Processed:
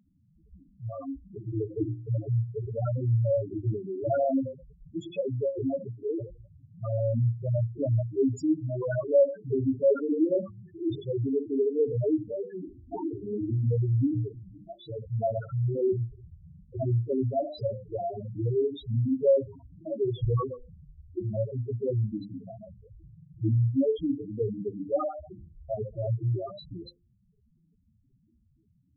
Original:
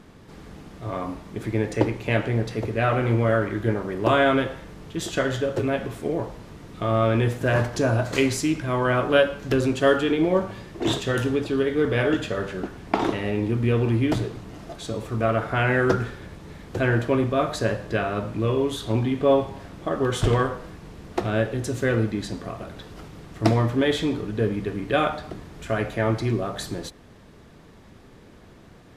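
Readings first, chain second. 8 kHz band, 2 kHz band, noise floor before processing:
under -20 dB, under -25 dB, -49 dBFS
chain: spectral noise reduction 9 dB; loudest bins only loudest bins 2; hum notches 50/100/150/200/250/300/350 Hz

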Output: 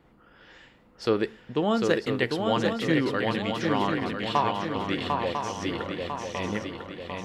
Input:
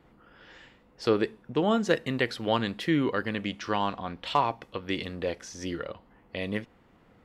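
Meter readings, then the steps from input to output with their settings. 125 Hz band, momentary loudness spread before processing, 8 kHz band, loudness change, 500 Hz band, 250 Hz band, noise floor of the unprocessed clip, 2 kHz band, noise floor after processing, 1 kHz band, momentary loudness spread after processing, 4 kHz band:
+2.5 dB, 11 LU, +2.0 dB, +2.0 dB, +2.5 dB, +2.0 dB, -61 dBFS, +2.5 dB, -58 dBFS, +2.5 dB, 8 LU, +2.5 dB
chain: shuffle delay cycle 998 ms, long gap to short 3:1, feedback 49%, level -4 dB

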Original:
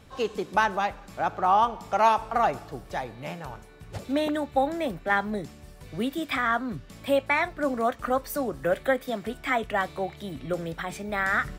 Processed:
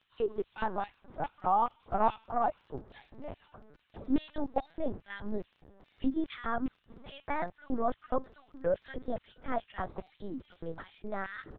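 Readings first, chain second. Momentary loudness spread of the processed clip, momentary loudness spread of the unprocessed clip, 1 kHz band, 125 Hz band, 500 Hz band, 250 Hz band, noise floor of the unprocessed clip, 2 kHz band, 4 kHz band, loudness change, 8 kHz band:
17 LU, 14 LU, -8.5 dB, -8.5 dB, -8.0 dB, -5.0 dB, -48 dBFS, -16.0 dB, -14.5 dB, -8.0 dB, under -35 dB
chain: peaking EQ 2.4 kHz -11.5 dB 0.91 oct; bands offset in time highs, lows 50 ms, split 160 Hz; LFO high-pass square 2.4 Hz 240–2800 Hz; LPC vocoder at 8 kHz pitch kept; crackle 21 per s -40 dBFS; distance through air 320 m; trim -4.5 dB

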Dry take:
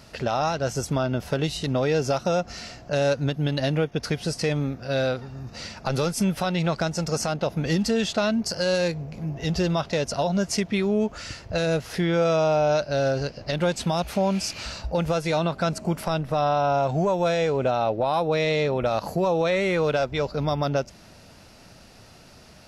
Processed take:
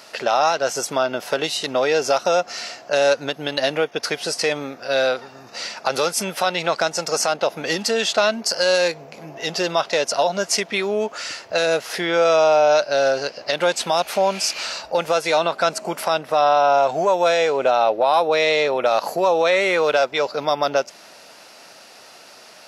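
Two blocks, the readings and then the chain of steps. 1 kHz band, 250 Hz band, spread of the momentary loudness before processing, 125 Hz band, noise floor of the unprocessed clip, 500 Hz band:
+7.5 dB, -5.0 dB, 6 LU, -12.5 dB, -49 dBFS, +5.5 dB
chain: high-pass 510 Hz 12 dB/octave; trim +8 dB

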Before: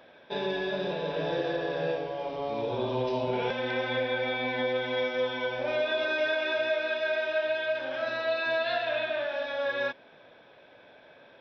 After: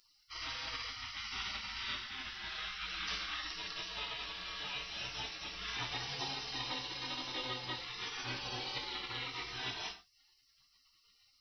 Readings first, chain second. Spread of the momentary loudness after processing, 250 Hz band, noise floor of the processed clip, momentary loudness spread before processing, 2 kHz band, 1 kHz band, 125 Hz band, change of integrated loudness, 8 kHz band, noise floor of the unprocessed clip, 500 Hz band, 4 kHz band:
3 LU, -15.5 dB, -71 dBFS, 4 LU, -11.0 dB, -9.5 dB, -9.5 dB, -10.0 dB, no reading, -55 dBFS, -26.0 dB, -1.0 dB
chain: spectral gate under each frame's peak -30 dB weak; gated-style reverb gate 150 ms falling, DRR 3 dB; trim +9.5 dB

